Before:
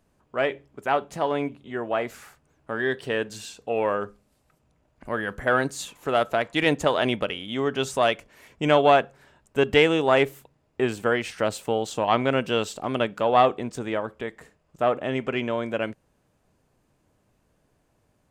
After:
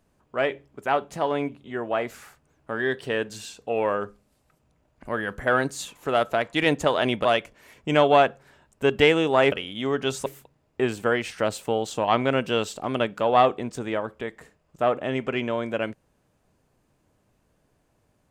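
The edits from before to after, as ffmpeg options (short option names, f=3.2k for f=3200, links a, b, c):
-filter_complex "[0:a]asplit=4[a][b][c][d];[a]atrim=end=7.252[e];[b]atrim=start=7.988:end=10.262[f];[c]atrim=start=7.248:end=7.992[g];[d]atrim=start=10.258[h];[e][f]acrossfade=d=0.004:c1=hsin:c2=hsin[i];[i][g]acrossfade=d=0.004:c1=hsin:c2=hsin[j];[j][h]acrossfade=d=0.004:c1=hsin:c2=hsin"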